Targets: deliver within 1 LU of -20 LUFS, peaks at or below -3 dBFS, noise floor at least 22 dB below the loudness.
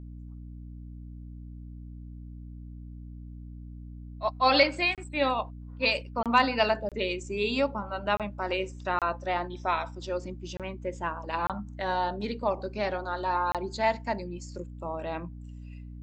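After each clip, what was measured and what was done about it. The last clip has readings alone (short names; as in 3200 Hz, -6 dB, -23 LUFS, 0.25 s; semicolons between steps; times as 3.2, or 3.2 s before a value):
dropouts 8; longest dropout 27 ms; hum 60 Hz; harmonics up to 300 Hz; hum level -40 dBFS; loudness -29.0 LUFS; peak -9.0 dBFS; loudness target -20.0 LUFS
-> interpolate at 4.95/6.23/6.89/8.17/8.99/10.57/11.47/13.52, 27 ms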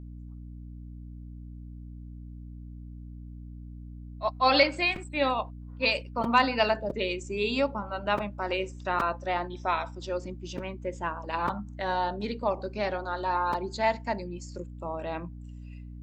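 dropouts 0; hum 60 Hz; harmonics up to 300 Hz; hum level -40 dBFS
-> notches 60/120/180/240/300 Hz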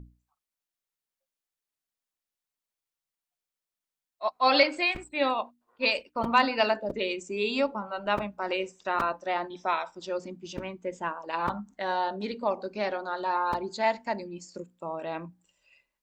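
hum none; loudness -29.0 LUFS; peak -8.5 dBFS; loudness target -20.0 LUFS
-> gain +9 dB; limiter -3 dBFS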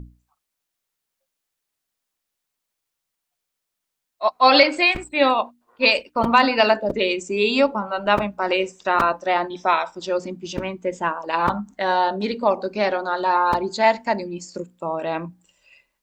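loudness -20.5 LUFS; peak -3.0 dBFS; noise floor -81 dBFS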